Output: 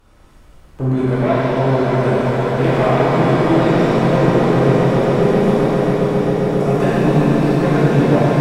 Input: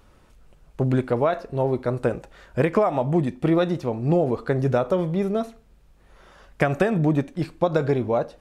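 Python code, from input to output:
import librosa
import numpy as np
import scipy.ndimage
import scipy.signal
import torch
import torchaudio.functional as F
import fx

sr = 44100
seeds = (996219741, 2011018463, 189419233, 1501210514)

p1 = fx.spec_erase(x, sr, start_s=4.09, length_s=2.57, low_hz=570.0, high_hz=5000.0)
p2 = fx.fold_sine(p1, sr, drive_db=10, ceiling_db=-6.0)
p3 = p1 + (p2 * librosa.db_to_amplitude(-8.0))
p4 = fx.echo_swell(p3, sr, ms=134, loudest=8, wet_db=-11.0)
p5 = fx.rev_shimmer(p4, sr, seeds[0], rt60_s=3.5, semitones=7, shimmer_db=-8, drr_db=-9.5)
y = p5 * librosa.db_to_amplitude(-11.0)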